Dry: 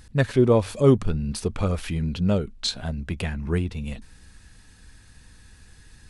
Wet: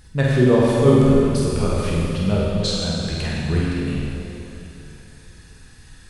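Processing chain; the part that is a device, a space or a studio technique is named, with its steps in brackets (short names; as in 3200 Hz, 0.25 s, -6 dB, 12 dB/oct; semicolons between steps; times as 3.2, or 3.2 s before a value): tunnel (flutter echo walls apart 8.3 m, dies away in 0.66 s; reverb RT60 3.3 s, pre-delay 12 ms, DRR -2.5 dB); gain -1 dB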